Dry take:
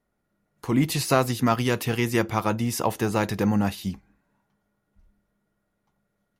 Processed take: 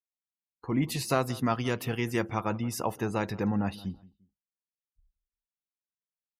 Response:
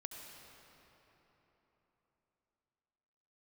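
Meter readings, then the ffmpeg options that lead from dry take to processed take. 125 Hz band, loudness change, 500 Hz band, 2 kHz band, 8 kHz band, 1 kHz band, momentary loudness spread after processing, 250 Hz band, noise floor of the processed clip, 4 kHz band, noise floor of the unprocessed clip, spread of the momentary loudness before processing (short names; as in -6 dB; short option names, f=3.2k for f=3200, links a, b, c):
-6.0 dB, -6.0 dB, -6.0 dB, -6.5 dB, -7.5 dB, -6.0 dB, 8 LU, -6.0 dB, under -85 dBFS, -7.0 dB, -76 dBFS, 8 LU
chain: -filter_complex "[0:a]afftdn=nr=36:nf=-41,asplit=2[a][b];[b]adelay=174,lowpass=f=2k:p=1,volume=-20dB,asplit=2[c][d];[d]adelay=174,lowpass=f=2k:p=1,volume=0.31[e];[a][c][e]amix=inputs=3:normalize=0,volume=-6dB"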